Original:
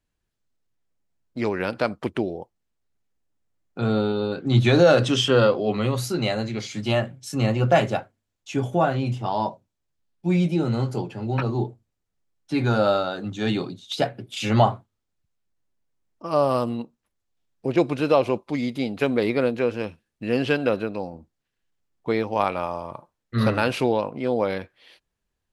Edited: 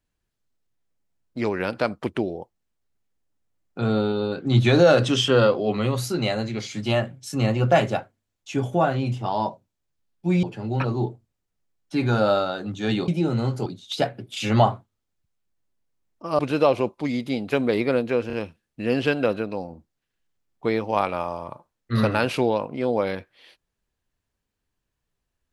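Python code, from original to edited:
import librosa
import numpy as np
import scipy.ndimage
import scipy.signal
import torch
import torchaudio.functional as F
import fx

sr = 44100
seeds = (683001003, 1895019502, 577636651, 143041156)

y = fx.edit(x, sr, fx.move(start_s=10.43, length_s=0.58, to_s=13.66),
    fx.cut(start_s=16.39, length_s=1.49),
    fx.stutter(start_s=19.76, slice_s=0.03, count=3), tone=tone)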